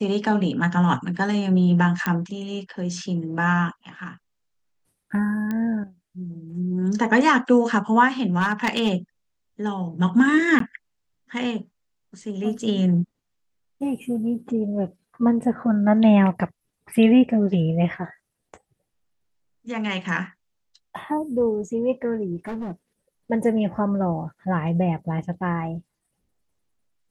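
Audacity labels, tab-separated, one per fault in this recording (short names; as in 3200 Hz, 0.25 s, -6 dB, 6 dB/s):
2.060000	2.060000	pop -10 dBFS
5.510000	5.510000	pop -16 dBFS
8.400000	8.930000	clipped -15 dBFS
10.590000	10.600000	gap 13 ms
22.470000	22.720000	clipped -27 dBFS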